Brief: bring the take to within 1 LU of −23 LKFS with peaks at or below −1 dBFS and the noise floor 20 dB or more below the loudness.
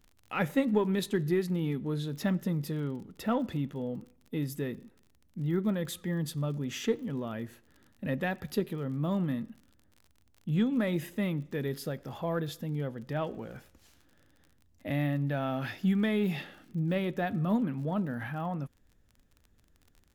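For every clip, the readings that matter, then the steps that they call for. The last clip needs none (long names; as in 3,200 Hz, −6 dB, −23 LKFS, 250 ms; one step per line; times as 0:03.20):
crackle rate 36 per second; integrated loudness −32.5 LKFS; sample peak −14.5 dBFS; target loudness −23.0 LKFS
→ click removal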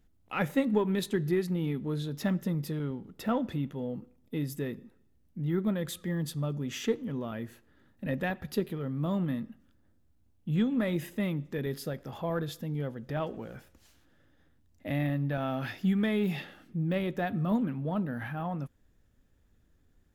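crackle rate 1.0 per second; integrated loudness −32.5 LKFS; sample peak −14.5 dBFS; target loudness −23.0 LKFS
→ level +9.5 dB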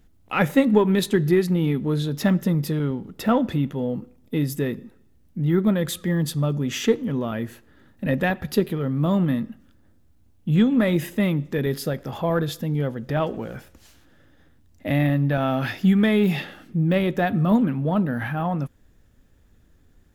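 integrated loudness −23.0 LKFS; sample peak −5.0 dBFS; background noise floor −56 dBFS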